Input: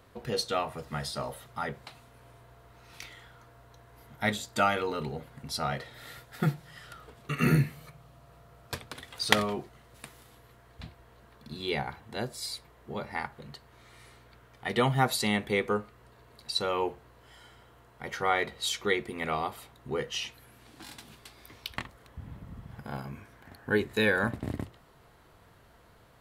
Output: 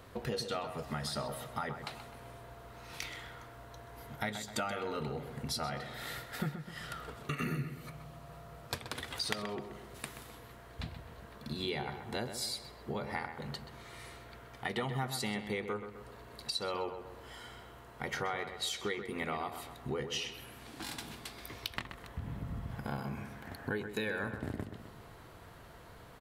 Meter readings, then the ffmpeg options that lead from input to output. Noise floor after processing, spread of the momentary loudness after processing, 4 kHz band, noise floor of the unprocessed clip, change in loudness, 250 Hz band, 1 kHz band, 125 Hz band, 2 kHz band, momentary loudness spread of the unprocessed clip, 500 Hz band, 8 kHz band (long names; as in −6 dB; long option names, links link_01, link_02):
−53 dBFS, 15 LU, −4.5 dB, −58 dBFS, −8.5 dB, −6.5 dB, −7.0 dB, −6.5 dB, −7.5 dB, 22 LU, −7.0 dB, −3.5 dB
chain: -filter_complex "[0:a]acompressor=threshold=-39dB:ratio=6,asplit=2[link_01][link_02];[link_02]adelay=129,lowpass=frequency=2800:poles=1,volume=-8.5dB,asplit=2[link_03][link_04];[link_04]adelay=129,lowpass=frequency=2800:poles=1,volume=0.52,asplit=2[link_05][link_06];[link_06]adelay=129,lowpass=frequency=2800:poles=1,volume=0.52,asplit=2[link_07][link_08];[link_08]adelay=129,lowpass=frequency=2800:poles=1,volume=0.52,asplit=2[link_09][link_10];[link_10]adelay=129,lowpass=frequency=2800:poles=1,volume=0.52,asplit=2[link_11][link_12];[link_12]adelay=129,lowpass=frequency=2800:poles=1,volume=0.52[link_13];[link_03][link_05][link_07][link_09][link_11][link_13]amix=inputs=6:normalize=0[link_14];[link_01][link_14]amix=inputs=2:normalize=0,volume=4.5dB"